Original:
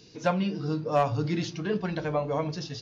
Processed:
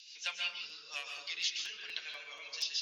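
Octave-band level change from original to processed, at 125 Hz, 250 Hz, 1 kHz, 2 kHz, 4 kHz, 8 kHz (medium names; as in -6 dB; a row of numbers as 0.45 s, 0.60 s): under -40 dB, under -40 dB, -22.0 dB, -1.0 dB, +6.0 dB, no reading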